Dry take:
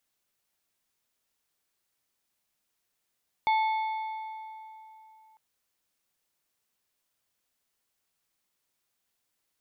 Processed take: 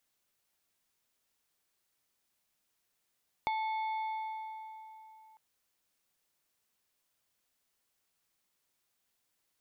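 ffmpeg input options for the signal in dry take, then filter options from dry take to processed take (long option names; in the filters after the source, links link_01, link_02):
-f lavfi -i "aevalsrc='0.0891*pow(10,-3*t/3.15)*sin(2*PI*877*t)+0.0316*pow(10,-3*t/2.393)*sin(2*PI*2192.5*t)+0.0112*pow(10,-3*t/2.078)*sin(2*PI*3508*t)+0.00398*pow(10,-3*t/1.944)*sin(2*PI*4385*t)':duration=1.9:sample_rate=44100"
-af "acompressor=threshold=-32dB:ratio=6"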